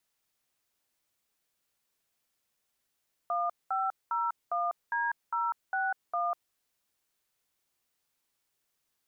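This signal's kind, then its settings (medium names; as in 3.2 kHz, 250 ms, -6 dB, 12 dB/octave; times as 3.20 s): DTMF "1501D061", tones 197 ms, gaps 208 ms, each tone -30 dBFS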